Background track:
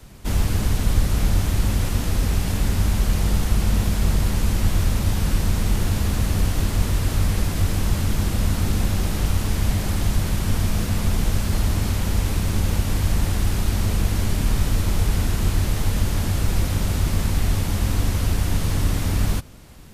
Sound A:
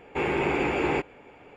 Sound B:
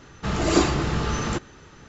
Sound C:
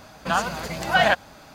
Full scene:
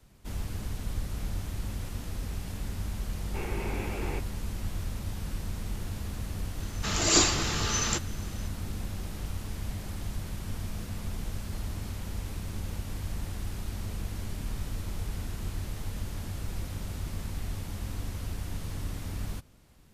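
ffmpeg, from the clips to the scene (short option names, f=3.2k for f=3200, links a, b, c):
-filter_complex "[0:a]volume=-14.5dB[a];[2:a]crystalizer=i=7.5:c=0[b];[1:a]atrim=end=1.56,asetpts=PTS-STARTPTS,volume=-12dB,afade=t=in:d=0.004:c=hsin,afade=t=out:st=1.556:d=0.004:c=hsin,adelay=3190[c];[b]atrim=end=1.88,asetpts=PTS-STARTPTS,volume=-9dB,afade=t=in:d=0.004:c=hsin,afade=t=out:st=1.876:d=0.004:c=hsin,adelay=6600[d];[a][c][d]amix=inputs=3:normalize=0"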